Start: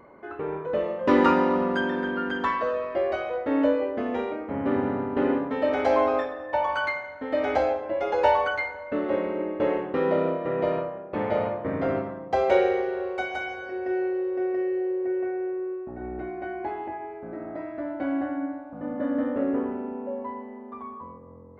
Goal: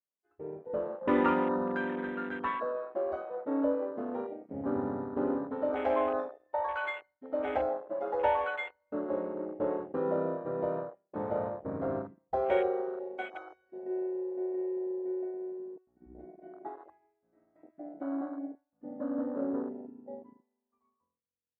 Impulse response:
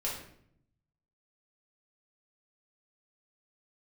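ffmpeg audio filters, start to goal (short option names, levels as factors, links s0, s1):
-af "agate=range=0.0224:threshold=0.0447:ratio=3:detection=peak,afwtdn=0.0282,volume=0.447"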